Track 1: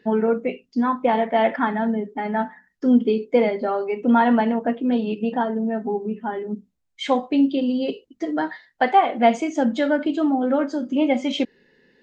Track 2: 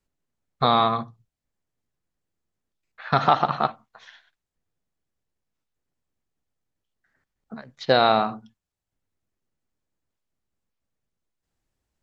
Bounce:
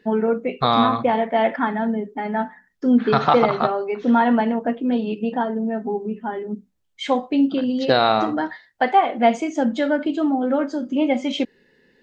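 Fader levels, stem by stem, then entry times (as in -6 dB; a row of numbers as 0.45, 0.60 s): 0.0, +1.0 dB; 0.00, 0.00 s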